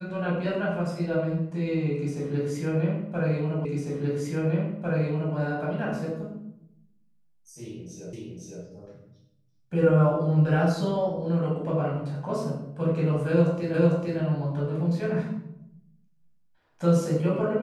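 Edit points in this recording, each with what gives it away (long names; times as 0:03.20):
0:03.65: the same again, the last 1.7 s
0:08.13: the same again, the last 0.51 s
0:13.74: the same again, the last 0.45 s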